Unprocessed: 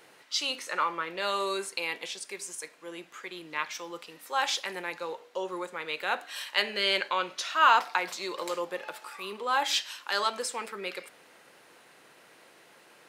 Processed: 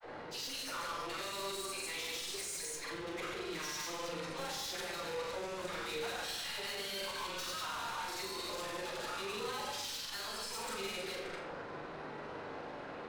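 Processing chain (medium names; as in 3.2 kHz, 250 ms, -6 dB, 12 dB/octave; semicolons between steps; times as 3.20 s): chunks repeated in reverse 114 ms, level -3 dB; in parallel at -2.5 dB: gain riding within 3 dB; on the sum: resonant high shelf 3.3 kHz +6.5 dB, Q 1.5; level-controlled noise filter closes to 1 kHz, open at -22 dBFS; compression 4:1, threshold -36 dBFS, peak gain reduction 20 dB; phase dispersion lows, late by 102 ms, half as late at 460 Hz; valve stage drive 49 dB, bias 0.4; granulator, pitch spread up and down by 0 st; flutter echo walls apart 7 m, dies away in 0.36 s; on a send at -3 dB: reverberation RT60 0.90 s, pre-delay 13 ms; on the sum: trim +8.5 dB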